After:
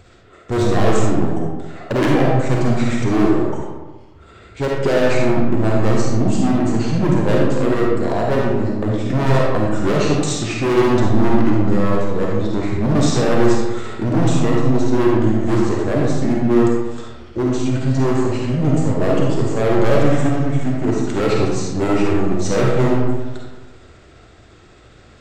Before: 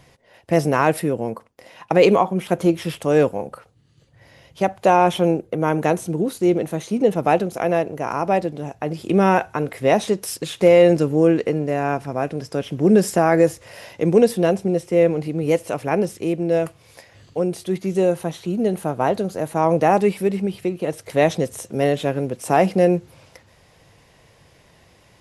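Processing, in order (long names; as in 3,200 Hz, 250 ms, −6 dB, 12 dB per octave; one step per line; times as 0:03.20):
pitch shift by two crossfaded delay taps −6 semitones
low-shelf EQ 280 Hz +3.5 dB
hard clipping −19.5 dBFS, distortion −5 dB
convolution reverb RT60 1.3 s, pre-delay 10 ms, DRR −2.5 dB
level +3 dB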